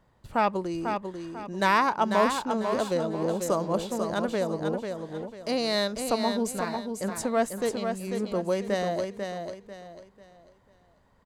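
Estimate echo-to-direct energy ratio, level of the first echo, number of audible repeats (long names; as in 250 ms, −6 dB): −5.5 dB, −6.0 dB, 3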